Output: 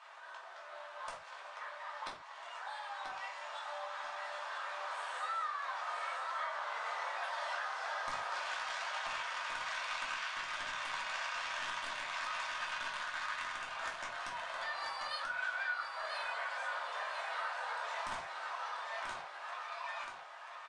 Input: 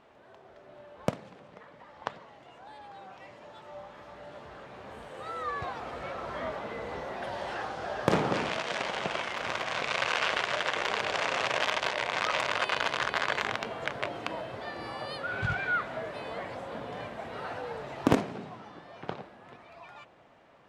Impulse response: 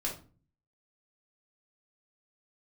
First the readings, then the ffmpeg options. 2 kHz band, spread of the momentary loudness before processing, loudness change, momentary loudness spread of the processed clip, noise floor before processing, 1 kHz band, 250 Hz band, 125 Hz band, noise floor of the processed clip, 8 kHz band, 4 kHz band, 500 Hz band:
-5.0 dB, 21 LU, -7.5 dB, 8 LU, -55 dBFS, -4.5 dB, -28.5 dB, under -25 dB, -51 dBFS, -5.0 dB, -7.0 dB, -13.5 dB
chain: -filter_complex "[0:a]highpass=f=950:w=0.5412,highpass=f=950:w=1.3066,equalizer=f=2.6k:t=o:w=1.3:g=-4,bandreject=f=2.1k:w=26,acompressor=threshold=-50dB:ratio=6,aeval=exprs='0.0112*(abs(mod(val(0)/0.0112+3,4)-2)-1)':c=same,aecho=1:1:986|1972|2958|3944:0.501|0.145|0.0421|0.0122[a];[1:a]atrim=start_sample=2205,atrim=end_sample=6615[b];[a][b]afir=irnorm=-1:irlink=0,aresample=22050,aresample=44100,volume=9dB"

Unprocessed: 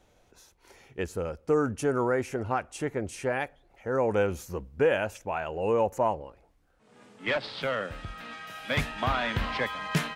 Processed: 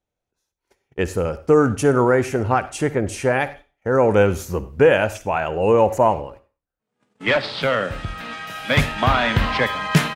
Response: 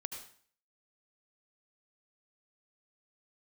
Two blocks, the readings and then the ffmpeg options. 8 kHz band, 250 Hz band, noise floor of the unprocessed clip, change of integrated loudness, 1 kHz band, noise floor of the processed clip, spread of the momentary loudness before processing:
+9.5 dB, +10.5 dB, -64 dBFS, +10.0 dB, +10.0 dB, -84 dBFS, 13 LU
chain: -filter_complex "[0:a]agate=range=-31dB:threshold=-50dB:ratio=16:detection=peak,equalizer=f=130:t=o:w=1.3:g=2.5,asplit=2[a][b];[b]adelay=100,highpass=300,lowpass=3.4k,asoftclip=type=hard:threshold=-21dB,volume=-21dB[c];[a][c]amix=inputs=2:normalize=0,asplit=2[d][e];[1:a]atrim=start_sample=2205,asetrate=66150,aresample=44100[f];[e][f]afir=irnorm=-1:irlink=0,volume=-2.5dB[g];[d][g]amix=inputs=2:normalize=0,volume=7dB"

